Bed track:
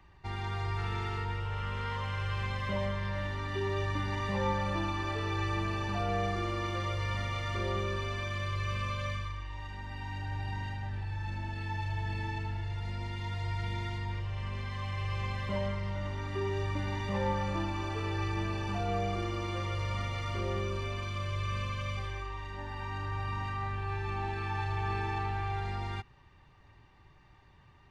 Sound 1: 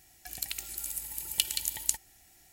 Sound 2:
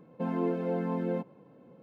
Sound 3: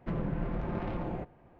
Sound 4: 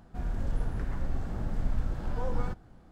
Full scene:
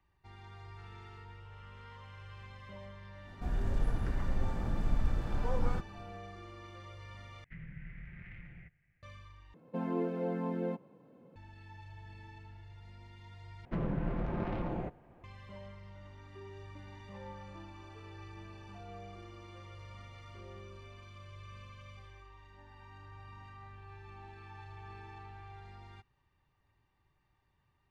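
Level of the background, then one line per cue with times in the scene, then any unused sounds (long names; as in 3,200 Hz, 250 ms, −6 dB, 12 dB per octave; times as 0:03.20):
bed track −16 dB
0:03.27: mix in 4 −1 dB
0:07.44: overwrite with 3 −12.5 dB + drawn EQ curve 160 Hz 0 dB, 230 Hz −14 dB, 350 Hz −19 dB, 1,000 Hz −22 dB, 2,000 Hz +15 dB, 4,000 Hz −9 dB
0:09.54: overwrite with 2 −4 dB
0:13.65: overwrite with 3 −1 dB
not used: 1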